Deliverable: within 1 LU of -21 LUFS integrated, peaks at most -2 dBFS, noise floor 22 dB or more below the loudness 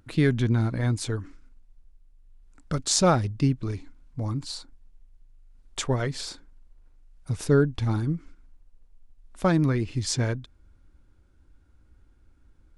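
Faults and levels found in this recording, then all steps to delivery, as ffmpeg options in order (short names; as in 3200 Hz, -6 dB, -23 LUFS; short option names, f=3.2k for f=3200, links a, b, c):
loudness -26.5 LUFS; peak -4.5 dBFS; loudness target -21.0 LUFS
-> -af "volume=5.5dB,alimiter=limit=-2dB:level=0:latency=1"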